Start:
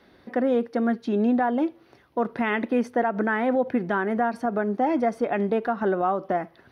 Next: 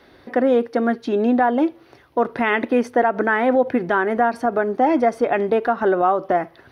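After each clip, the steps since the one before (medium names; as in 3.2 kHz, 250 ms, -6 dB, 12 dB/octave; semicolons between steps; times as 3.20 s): peaking EQ 200 Hz -9.5 dB 0.37 oct; trim +6.5 dB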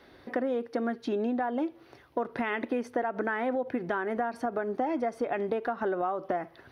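compression 5:1, threshold -22 dBFS, peak gain reduction 9.5 dB; trim -5 dB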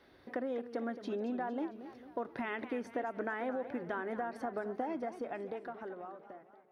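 fade out at the end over 1.94 s; modulated delay 226 ms, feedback 53%, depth 209 cents, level -12.5 dB; trim -7.5 dB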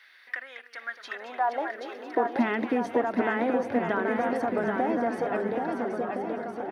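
high-pass sweep 1.9 kHz -> 99 Hz, 0.82–3.09 s; bouncing-ball echo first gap 780 ms, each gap 0.75×, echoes 5; trim +8.5 dB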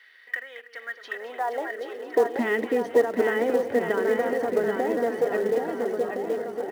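small resonant body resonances 450/1900/3000 Hz, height 13 dB, ringing for 35 ms; in parallel at -4 dB: short-mantissa float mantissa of 2-bit; on the sum: trim -7.5 dB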